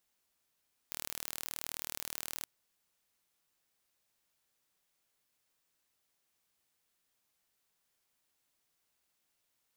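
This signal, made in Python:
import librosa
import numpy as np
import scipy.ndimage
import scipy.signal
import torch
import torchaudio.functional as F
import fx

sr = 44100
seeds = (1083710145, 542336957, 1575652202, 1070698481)

y = 10.0 ** (-12.0 / 20.0) * (np.mod(np.arange(round(1.53 * sr)), round(sr / 38.9)) == 0)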